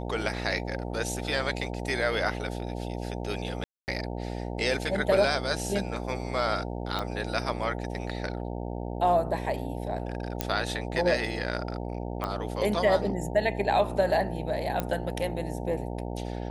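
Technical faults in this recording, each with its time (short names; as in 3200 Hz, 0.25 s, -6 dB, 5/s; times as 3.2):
buzz 60 Hz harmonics 15 -34 dBFS
3.64–3.88 gap 0.239 s
6.99 pop -17 dBFS
10.41 pop -10 dBFS
12.24 pop -18 dBFS
14.8 pop -14 dBFS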